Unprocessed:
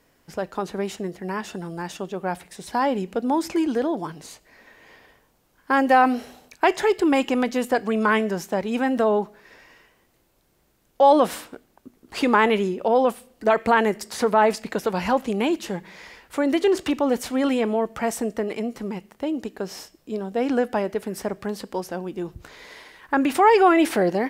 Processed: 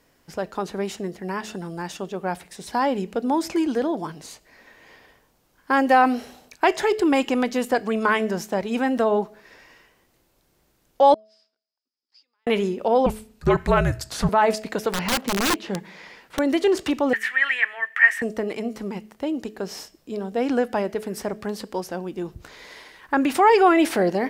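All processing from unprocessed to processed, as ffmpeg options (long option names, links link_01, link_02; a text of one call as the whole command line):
ffmpeg -i in.wav -filter_complex "[0:a]asettb=1/sr,asplit=3[link_01][link_02][link_03];[link_01]atrim=end=11.144[link_04];[link_02]atrim=start=11.14:end=12.47,asetpts=PTS-STARTPTS,afade=type=in:duration=0.004:curve=qsin,afade=type=out:start_time=1.326:duration=0.004:curve=qsin,acompressor=threshold=-33dB:ratio=8:attack=3.2:release=140:knee=1:detection=peak,bandpass=frequency=5000:width_type=q:width=15,aemphasis=mode=reproduction:type=75kf[link_05];[link_03]atrim=start=12.466[link_06];[link_04][link_05]acrossfade=duration=0.004:curve1=hsin:curve2=qsin[link_07];[link_07][link_06]acrossfade=duration=0.004:curve1=qsin:curve2=hsin,asettb=1/sr,asplit=3[link_08][link_09][link_10];[link_08]atrim=end=13.064[link_11];[link_09]atrim=start=13.06:end=14.29,asetpts=PTS-STARTPTS,afade=type=in:duration=0.004:curve=qsin,afade=type=out:start_time=1.226:duration=0.004:curve=qsin,bandreject=frequency=50:width_type=h:width=6,bandreject=frequency=100:width_type=h:width=6,bandreject=frequency=150:width_type=h:width=6,bandreject=frequency=200:width_type=h:width=6,bandreject=frequency=250:width_type=h:width=6,bandreject=frequency=300:width_type=h:width=6,bandreject=frequency=350:width_type=h:width=6,bandreject=frequency=400:width_type=h:width=6,afreqshift=-280[link_12];[link_10]atrim=start=14.286[link_13];[link_11][link_12]acrossfade=duration=0.004:curve1=hsin:curve2=qsin[link_14];[link_14][link_13]acrossfade=duration=0.004:curve1=qsin:curve2=hsin,asettb=1/sr,asplit=3[link_15][link_16][link_17];[link_15]atrim=end=14.934[link_18];[link_16]atrim=start=14.93:end=16.39,asetpts=PTS-STARTPTS,afade=type=in:duration=0.004:curve=qsin,afade=type=out:start_time=1.456:duration=0.004:curve=qsin,acrossover=split=4400[link_19][link_20];[link_20]acompressor=threshold=-60dB:ratio=4:attack=1:release=60[link_21];[link_19][link_21]amix=inputs=2:normalize=0,lowshelf=frequency=110:width_type=q:width=1.5:gain=-8,aeval=exprs='(mod(6.68*val(0)+1,2)-1)/6.68':channel_layout=same[link_22];[link_17]atrim=start=16.386[link_23];[link_18][link_22]acrossfade=duration=0.004:curve1=hsin:curve2=qsin[link_24];[link_24][link_23]acrossfade=duration=0.004:curve1=qsin:curve2=hsin,asettb=1/sr,asplit=3[link_25][link_26][link_27];[link_25]atrim=end=17.134[link_28];[link_26]atrim=start=17.13:end=18.22,asetpts=PTS-STARTPTS,afade=type=in:duration=0.004:curve=qsin,afade=type=out:start_time=1.086:duration=0.004:curve=qsin,highpass=frequency=1800:width_type=q:width=15,highshelf=frequency=3500:width_type=q:width=1.5:gain=-9[link_29];[link_27]atrim=start=18.216[link_30];[link_28][link_29]acrossfade=duration=0.004:curve1=hsin:curve2=qsin[link_31];[link_31][link_30]acrossfade=duration=0.004:curve1=qsin:curve2=hsin,equalizer=frequency=5100:width=1.5:gain=2,bandreject=frequency=215.8:width_type=h:width=4,bandreject=frequency=431.6:width_type=h:width=4,bandreject=frequency=647.4:width_type=h:width=4" out.wav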